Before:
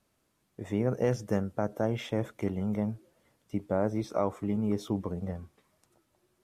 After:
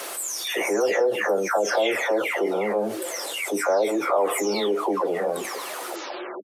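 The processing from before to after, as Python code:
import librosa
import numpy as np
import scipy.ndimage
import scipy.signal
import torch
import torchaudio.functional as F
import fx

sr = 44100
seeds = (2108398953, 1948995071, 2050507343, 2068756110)

y = fx.spec_delay(x, sr, highs='early', ms=478)
y = scipy.signal.sosfilt(scipy.signal.butter(4, 420.0, 'highpass', fs=sr, output='sos'), y)
y = fx.env_flatten(y, sr, amount_pct=70)
y = F.gain(torch.from_numpy(y), 8.0).numpy()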